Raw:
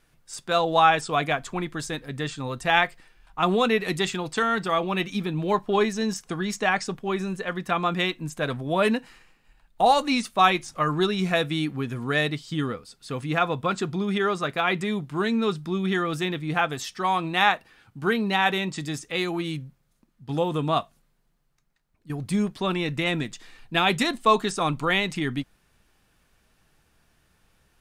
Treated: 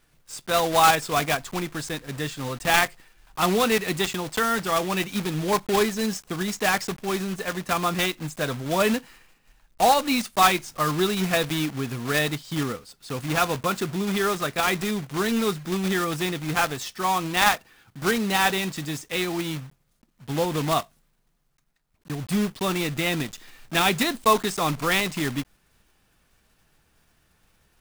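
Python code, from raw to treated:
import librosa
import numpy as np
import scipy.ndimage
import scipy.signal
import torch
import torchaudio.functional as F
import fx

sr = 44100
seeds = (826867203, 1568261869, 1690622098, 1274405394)

y = fx.block_float(x, sr, bits=3)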